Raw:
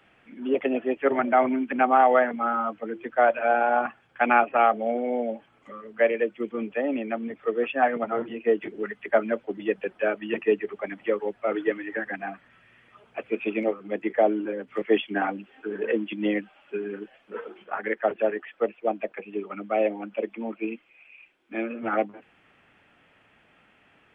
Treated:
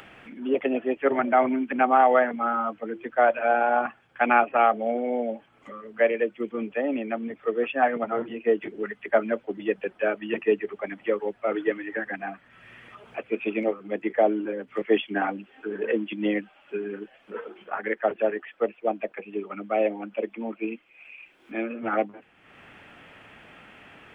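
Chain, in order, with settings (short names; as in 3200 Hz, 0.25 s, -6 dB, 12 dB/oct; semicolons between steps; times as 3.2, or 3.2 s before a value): upward compressor, threshold -38 dBFS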